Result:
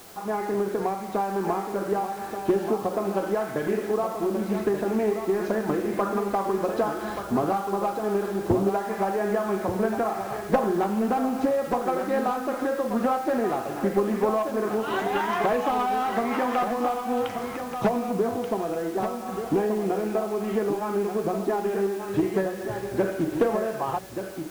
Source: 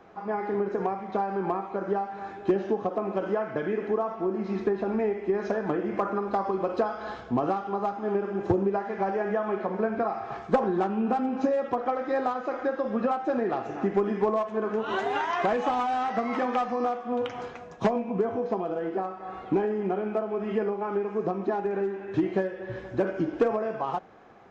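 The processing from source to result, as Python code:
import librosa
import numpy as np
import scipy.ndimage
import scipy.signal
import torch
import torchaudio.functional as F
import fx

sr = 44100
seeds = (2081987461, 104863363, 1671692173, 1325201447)

p1 = fx.low_shelf(x, sr, hz=85.0, db=6.0)
p2 = fx.hum_notches(p1, sr, base_hz=60, count=3)
p3 = 10.0 ** (-29.5 / 20.0) * np.tanh(p2 / 10.0 ** (-29.5 / 20.0))
p4 = p2 + F.gain(torch.from_numpy(p3), -9.0).numpy()
p5 = fx.quant_dither(p4, sr, seeds[0], bits=8, dither='triangular')
p6 = p5 + fx.echo_single(p5, sr, ms=1181, db=-8.0, dry=0)
y = fx.doppler_dist(p6, sr, depth_ms=0.27)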